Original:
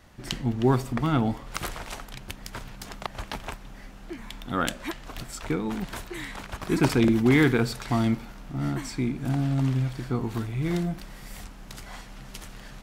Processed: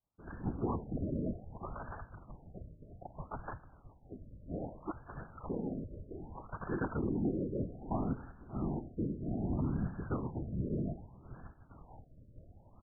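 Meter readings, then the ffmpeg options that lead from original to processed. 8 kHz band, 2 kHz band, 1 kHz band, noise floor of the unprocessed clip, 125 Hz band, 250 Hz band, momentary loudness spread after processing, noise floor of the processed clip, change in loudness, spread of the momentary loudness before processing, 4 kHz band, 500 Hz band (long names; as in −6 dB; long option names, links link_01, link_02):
below −40 dB, −20.0 dB, −11.5 dB, −45 dBFS, −11.5 dB, −11.5 dB, 18 LU, −61 dBFS, −12.0 dB, 21 LU, below −40 dB, −11.5 dB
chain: -filter_complex "[0:a]agate=range=-33dB:threshold=-35dB:ratio=3:detection=peak,equalizer=frequency=190:width=0.32:gain=-5.5,afftfilt=real='hypot(re,im)*cos(2*PI*random(0))':imag='hypot(re,im)*sin(2*PI*random(1))':win_size=512:overlap=0.75,asplit=2[link_01][link_02];[link_02]adelay=579,lowpass=frequency=2100:poles=1,volume=-23dB,asplit=2[link_03][link_04];[link_04]adelay=579,lowpass=frequency=2100:poles=1,volume=0.33[link_05];[link_03][link_05]amix=inputs=2:normalize=0[link_06];[link_01][link_06]amix=inputs=2:normalize=0,alimiter=level_in=3dB:limit=-24dB:level=0:latency=1:release=228,volume=-3dB,afftfilt=real='re*lt(b*sr/1024,630*pow(1800/630,0.5+0.5*sin(2*PI*0.63*pts/sr)))':imag='im*lt(b*sr/1024,630*pow(1800/630,0.5+0.5*sin(2*PI*0.63*pts/sr)))':win_size=1024:overlap=0.75,volume=3dB"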